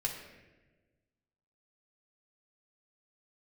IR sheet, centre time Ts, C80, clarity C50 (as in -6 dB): 37 ms, 7.0 dB, 5.5 dB